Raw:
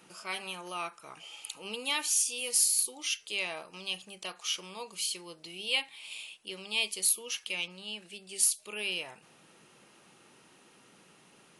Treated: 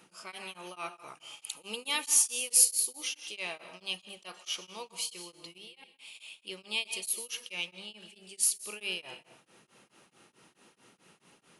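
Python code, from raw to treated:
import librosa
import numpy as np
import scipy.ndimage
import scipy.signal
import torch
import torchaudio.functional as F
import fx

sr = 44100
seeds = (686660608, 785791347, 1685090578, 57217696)

y = fx.high_shelf(x, sr, hz=7900.0, db=8.0, at=(1.08, 2.65))
y = fx.level_steps(y, sr, step_db=24, at=(5.58, 6.15))
y = fx.rev_plate(y, sr, seeds[0], rt60_s=0.81, hf_ratio=0.75, predelay_ms=110, drr_db=10.5)
y = y * np.abs(np.cos(np.pi * 4.6 * np.arange(len(y)) / sr))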